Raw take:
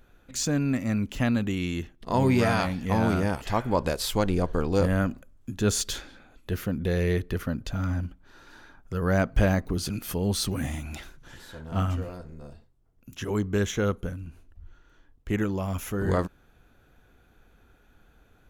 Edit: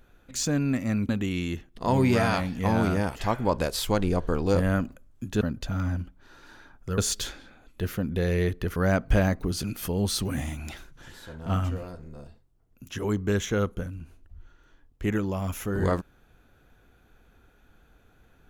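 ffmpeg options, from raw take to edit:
-filter_complex "[0:a]asplit=5[s0][s1][s2][s3][s4];[s0]atrim=end=1.092[s5];[s1]atrim=start=1.348:end=5.672[s6];[s2]atrim=start=7.448:end=9.022[s7];[s3]atrim=start=5.668:end=7.452[s8];[s4]atrim=start=9.018[s9];[s5][s6]acrossfade=d=0.004:c1=hsin:c2=hsin[s10];[s10][s7]acrossfade=d=0.004:c1=hsin:c2=hsin[s11];[s11][s8]acrossfade=d=0.004:c1=hsin:c2=hsin[s12];[s12][s9]acrossfade=d=0.004:c1=hsin:c2=hsin"

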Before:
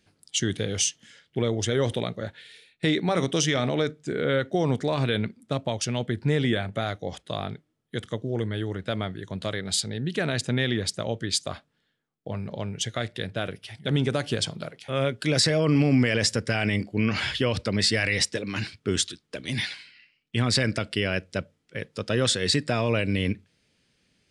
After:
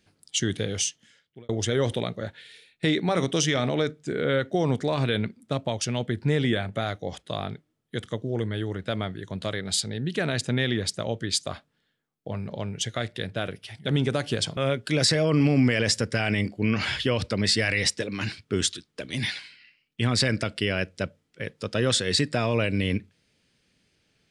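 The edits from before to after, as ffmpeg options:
-filter_complex "[0:a]asplit=3[s0][s1][s2];[s0]atrim=end=1.49,asetpts=PTS-STARTPTS,afade=t=out:st=0.64:d=0.85[s3];[s1]atrim=start=1.49:end=14.572,asetpts=PTS-STARTPTS,afade=t=in:d=0.004:c=hsin[s4];[s2]atrim=start=14.918[s5];[s3][s4]concat=n=2:v=0:a=1[s6];[s6][s5]acrossfade=d=0.004:c1=hsin:c2=hsin"

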